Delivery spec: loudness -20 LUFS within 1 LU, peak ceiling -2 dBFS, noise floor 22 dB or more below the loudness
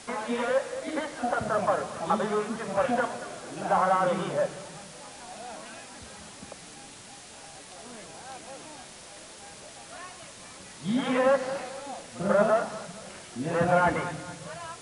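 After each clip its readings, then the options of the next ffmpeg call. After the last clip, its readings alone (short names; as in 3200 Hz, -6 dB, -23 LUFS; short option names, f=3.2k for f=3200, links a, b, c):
noise floor -47 dBFS; noise floor target -50 dBFS; loudness -28.0 LUFS; peak -11.0 dBFS; loudness target -20.0 LUFS
-> -af "afftdn=nr=6:nf=-47"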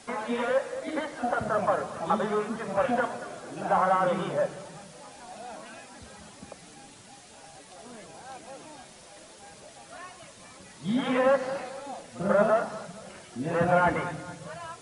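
noise floor -50 dBFS; loudness -28.0 LUFS; peak -11.0 dBFS; loudness target -20.0 LUFS
-> -af "volume=8dB"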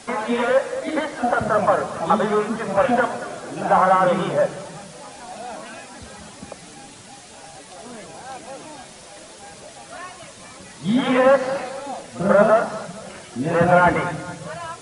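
loudness -20.0 LUFS; peak -3.0 dBFS; noise floor -42 dBFS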